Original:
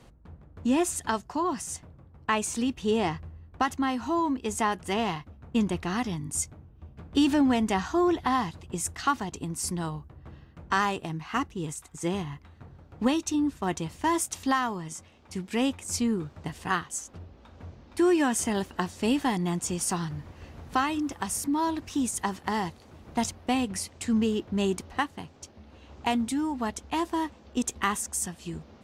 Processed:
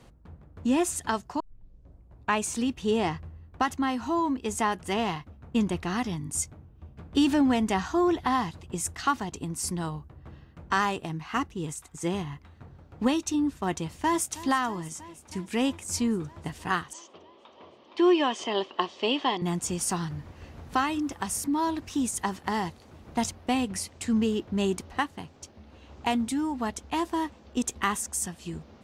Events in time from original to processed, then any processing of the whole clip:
1.40 s: tape start 0.96 s
13.78–14.39 s: echo throw 320 ms, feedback 80%, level -17.5 dB
16.93–19.42 s: cabinet simulation 360–5100 Hz, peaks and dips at 380 Hz +6 dB, 600 Hz +4 dB, 1.1 kHz +7 dB, 1.5 kHz -8 dB, 3.1 kHz +10 dB

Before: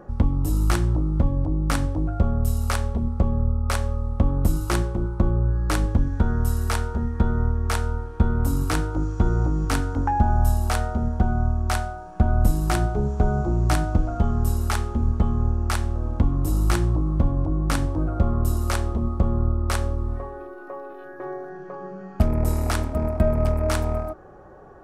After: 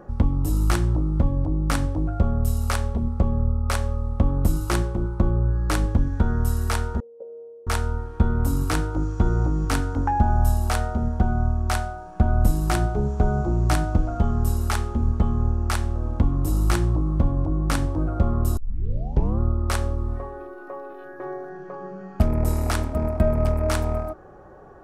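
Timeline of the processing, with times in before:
7.00–7.67 s: Butterworth band-pass 510 Hz, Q 5.1
18.57 s: tape start 0.83 s

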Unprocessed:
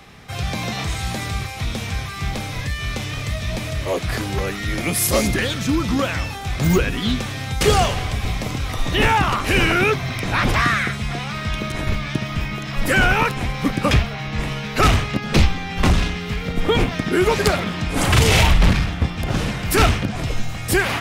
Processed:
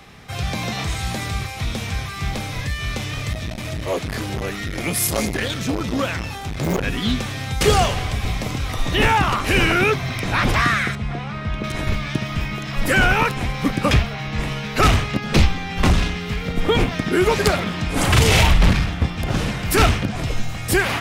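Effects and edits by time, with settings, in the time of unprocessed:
3.33–6.84 s: transformer saturation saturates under 660 Hz
10.95–11.64 s: low-pass 1.4 kHz 6 dB/octave

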